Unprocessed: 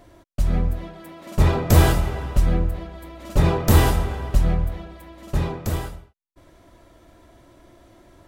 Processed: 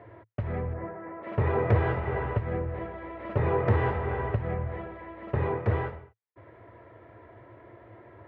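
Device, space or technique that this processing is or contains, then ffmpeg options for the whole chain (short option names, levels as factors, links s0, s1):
bass amplifier: -filter_complex "[0:a]acompressor=threshold=0.0891:ratio=6,highpass=f=82:w=0.5412,highpass=f=82:w=1.3066,equalizer=f=110:t=q:w=4:g=9,equalizer=f=170:t=q:w=4:g=-9,equalizer=f=270:t=q:w=4:g=-6,equalizer=f=450:t=q:w=4:g=9,equalizer=f=940:t=q:w=4:g=4,equalizer=f=1900:t=q:w=4:g=6,lowpass=f=2300:w=0.5412,lowpass=f=2300:w=1.3066,asplit=3[s0][s1][s2];[s0]afade=t=out:st=0.73:d=0.02[s3];[s1]lowpass=f=1900:w=0.5412,lowpass=f=1900:w=1.3066,afade=t=in:st=0.73:d=0.02,afade=t=out:st=1.22:d=0.02[s4];[s2]afade=t=in:st=1.22:d=0.02[s5];[s3][s4][s5]amix=inputs=3:normalize=0"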